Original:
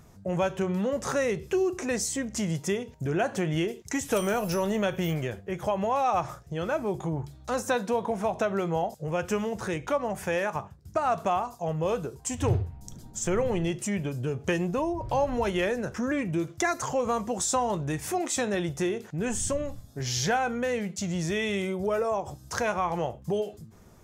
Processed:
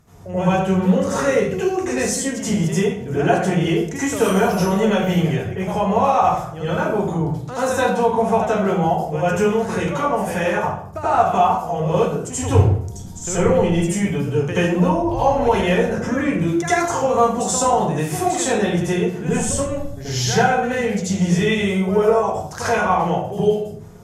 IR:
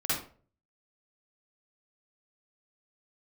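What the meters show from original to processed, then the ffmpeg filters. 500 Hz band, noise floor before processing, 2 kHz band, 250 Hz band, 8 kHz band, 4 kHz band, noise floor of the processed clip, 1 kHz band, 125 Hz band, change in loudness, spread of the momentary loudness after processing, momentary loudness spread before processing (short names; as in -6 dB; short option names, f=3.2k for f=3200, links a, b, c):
+9.5 dB, -50 dBFS, +8.5 dB, +10.5 dB, +7.5 dB, +8.0 dB, -32 dBFS, +11.0 dB, +11.5 dB, +10.0 dB, 6 LU, 6 LU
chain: -filter_complex "[1:a]atrim=start_sample=2205,asetrate=27342,aresample=44100[a];[0:a][a]afir=irnorm=-1:irlink=0,volume=-2.5dB"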